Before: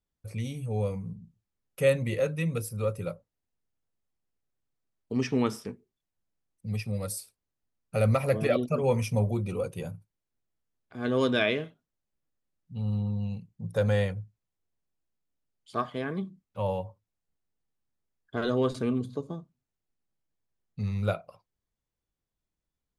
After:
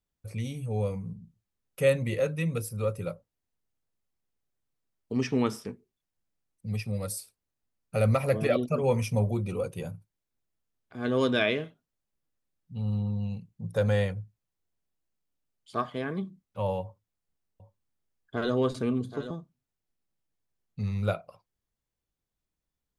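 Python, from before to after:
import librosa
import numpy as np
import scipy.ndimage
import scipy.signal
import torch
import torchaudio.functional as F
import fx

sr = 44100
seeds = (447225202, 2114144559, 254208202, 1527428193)

y = fx.echo_single(x, sr, ms=777, db=-11.5, at=(16.82, 19.31))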